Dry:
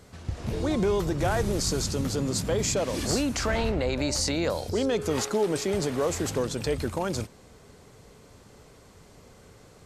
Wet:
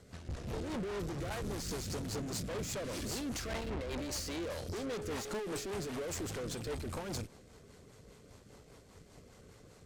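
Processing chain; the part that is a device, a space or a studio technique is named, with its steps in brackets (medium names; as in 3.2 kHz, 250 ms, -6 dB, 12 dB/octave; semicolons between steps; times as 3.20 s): overdriven rotary cabinet (valve stage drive 36 dB, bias 0.75; rotary cabinet horn 5 Hz); trim +1 dB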